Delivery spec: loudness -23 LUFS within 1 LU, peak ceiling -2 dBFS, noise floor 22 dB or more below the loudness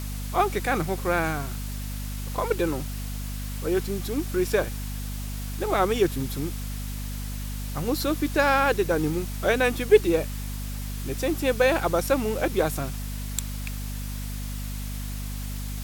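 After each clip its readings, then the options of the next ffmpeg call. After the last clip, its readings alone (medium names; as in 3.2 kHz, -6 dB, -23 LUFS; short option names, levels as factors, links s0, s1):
hum 50 Hz; highest harmonic 250 Hz; hum level -30 dBFS; noise floor -32 dBFS; noise floor target -49 dBFS; loudness -27.0 LUFS; peak level -5.0 dBFS; loudness target -23.0 LUFS
-> -af "bandreject=f=50:t=h:w=4,bandreject=f=100:t=h:w=4,bandreject=f=150:t=h:w=4,bandreject=f=200:t=h:w=4,bandreject=f=250:t=h:w=4"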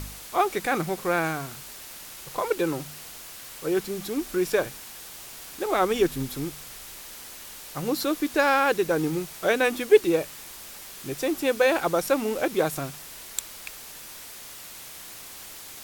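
hum not found; noise floor -42 dBFS; noise floor target -48 dBFS
-> -af "afftdn=nr=6:nf=-42"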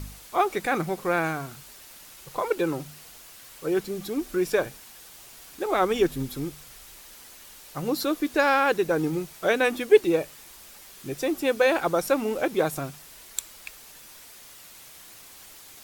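noise floor -48 dBFS; loudness -26.0 LUFS; peak level -5.5 dBFS; loudness target -23.0 LUFS
-> -af "volume=1.41"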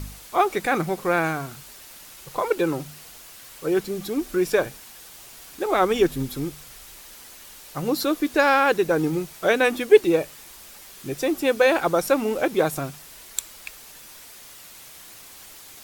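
loudness -23.0 LUFS; peak level -2.5 dBFS; noise floor -45 dBFS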